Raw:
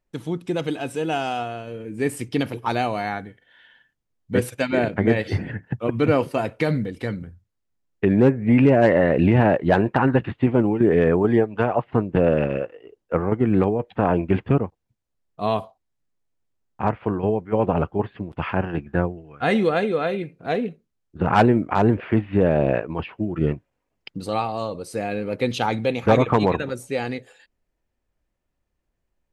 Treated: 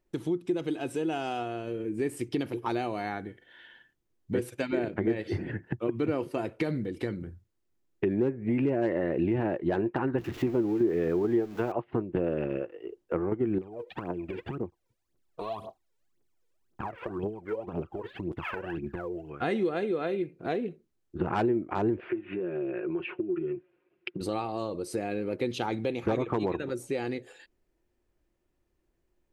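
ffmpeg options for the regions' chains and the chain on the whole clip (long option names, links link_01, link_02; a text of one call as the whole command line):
ffmpeg -i in.wav -filter_complex "[0:a]asettb=1/sr,asplit=3[link_01][link_02][link_03];[link_01]atrim=end=10.184[link_04];[link_02]atrim=start=10.18:end=11.72,asetpts=PTS-STARTPTS,afade=type=in:duration=0.004:curve=qsin,afade=type=out:start_time=1.536:duration=0.004:curve=qsin,aeval=exprs='val(0)+0.5*0.0266*sgn(val(0))':channel_layout=same,equalizer=frequency=9200:width=3.6:gain=-8[link_05];[link_03]atrim=start=11.716[link_06];[link_04][link_05]acrossfade=duration=0.004:curve1=hsin:curve2=qsin[link_07];[link_07][link_06]acrossfade=duration=0.004:curve1=qsin:curve2=hsin,asettb=1/sr,asplit=3[link_08][link_09][link_10];[link_08]atrim=end=13.584[link_11];[link_09]atrim=start=13.58:end=19.3,asetpts=PTS-STARTPTS,afade=type=in:duration=0.004:curve=qsin,afade=type=out:start_time=5.716:duration=0.004:curve=qsin,lowshelf=frequency=120:gain=-10.5,acompressor=threshold=-32dB:ratio=12:attack=3.2:release=140:knee=1:detection=peak,aphaser=in_gain=1:out_gain=1:delay=2.3:decay=0.75:speed=1.9:type=triangular[link_12];[link_10]atrim=start=19.296[link_13];[link_11][link_12]acrossfade=duration=0.004:curve1=hsin:curve2=qsin[link_14];[link_14][link_13]acrossfade=duration=0.004:curve1=qsin:curve2=hsin,asettb=1/sr,asplit=3[link_15][link_16][link_17];[link_15]atrim=end=22.094[link_18];[link_16]atrim=start=22.09:end=24.21,asetpts=PTS-STARTPTS,afade=type=in:duration=0.004:curve=qsin,afade=type=out:start_time=2.116:duration=0.004:curve=qsin,aecho=1:1:5.6:0.52,atrim=end_sample=93492,acompressor=threshold=-30dB:ratio=12:attack=3.2:release=140:knee=1:detection=peak,highpass=110,equalizer=frequency=220:width_type=q:width=4:gain=-6,equalizer=frequency=370:width_type=q:width=4:gain=9,equalizer=frequency=830:width_type=q:width=4:gain=-4,equalizer=frequency=1500:width_type=q:width=4:gain=7,equalizer=frequency=2500:width_type=q:width=4:gain=8,lowpass=frequency=3600:width=0.5412,lowpass=frequency=3600:width=1.3066[link_19];[link_17]atrim=start=24.206[link_20];[link_18][link_19]acrossfade=duration=0.004:curve1=hsin:curve2=qsin[link_21];[link_21][link_20]acrossfade=duration=0.004:curve1=qsin:curve2=hsin,equalizer=frequency=350:width_type=o:width=0.39:gain=12,acompressor=threshold=-32dB:ratio=2.5" out.wav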